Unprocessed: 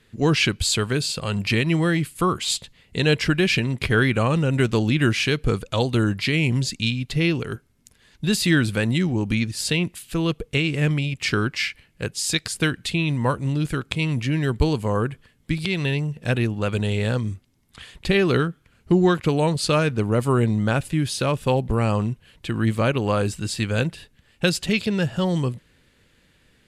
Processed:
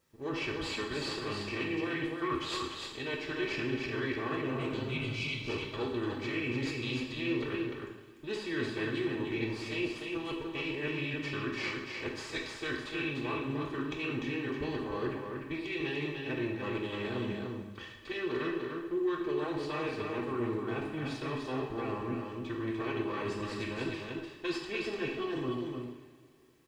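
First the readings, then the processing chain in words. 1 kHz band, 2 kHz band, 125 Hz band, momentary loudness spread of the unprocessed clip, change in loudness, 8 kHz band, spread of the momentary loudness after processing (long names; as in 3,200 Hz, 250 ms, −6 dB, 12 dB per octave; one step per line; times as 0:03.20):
−11.0 dB, −11.0 dB, −19.0 dB, 7 LU, −13.0 dB, −22.0 dB, 5 LU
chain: lower of the sound and its delayed copy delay 2.7 ms
low-pass filter 3,300 Hz 12 dB per octave
healed spectral selection 0:04.52–0:05.35, 220–2,000 Hz both
downward expander −51 dBFS
parametric band 91 Hz −6.5 dB 2.1 octaves
reversed playback
downward compressor 6 to 1, threshold −33 dBFS, peak gain reduction 17.5 dB
reversed playback
background noise pink −72 dBFS
notch comb filter 720 Hz
on a send: single-tap delay 297 ms −4.5 dB
on the sum: coupled-rooms reverb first 0.85 s, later 3 s, from −18 dB, DRR 0 dB
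level −2 dB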